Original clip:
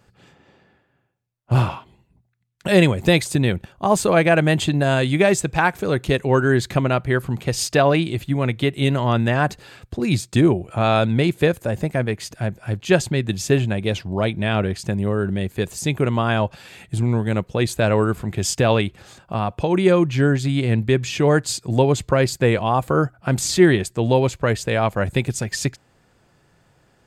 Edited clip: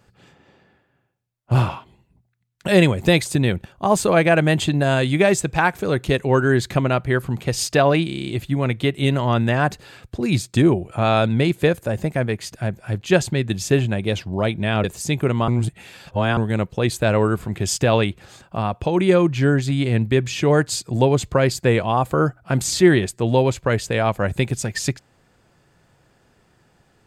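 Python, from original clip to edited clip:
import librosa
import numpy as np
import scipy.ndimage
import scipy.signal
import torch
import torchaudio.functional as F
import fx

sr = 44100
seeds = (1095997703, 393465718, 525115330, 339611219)

y = fx.edit(x, sr, fx.stutter(start_s=8.06, slice_s=0.03, count=8),
    fx.cut(start_s=14.63, length_s=0.98),
    fx.reverse_span(start_s=16.25, length_s=0.89), tone=tone)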